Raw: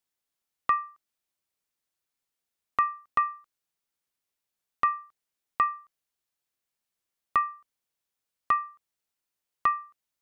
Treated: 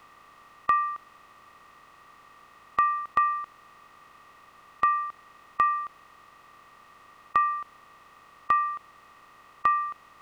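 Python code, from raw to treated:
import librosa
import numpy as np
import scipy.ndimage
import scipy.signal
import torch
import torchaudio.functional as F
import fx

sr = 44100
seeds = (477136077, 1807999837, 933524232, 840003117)

y = fx.bin_compress(x, sr, power=0.4)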